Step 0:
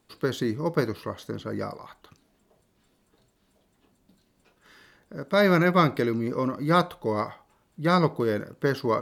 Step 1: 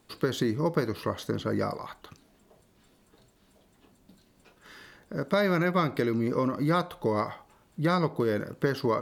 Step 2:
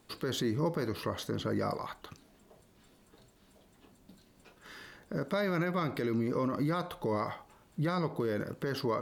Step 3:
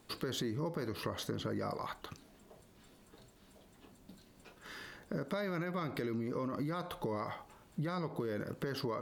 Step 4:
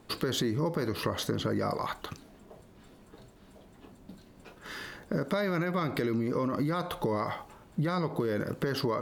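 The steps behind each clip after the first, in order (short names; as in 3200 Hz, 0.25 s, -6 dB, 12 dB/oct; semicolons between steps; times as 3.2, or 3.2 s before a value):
compressor 4:1, threshold -28 dBFS, peak gain reduction 11.5 dB; gain +4.5 dB
limiter -23 dBFS, peak gain reduction 11 dB
compressor, threshold -35 dBFS, peak gain reduction 8.5 dB; gain +1 dB
mismatched tape noise reduction decoder only; gain +7.5 dB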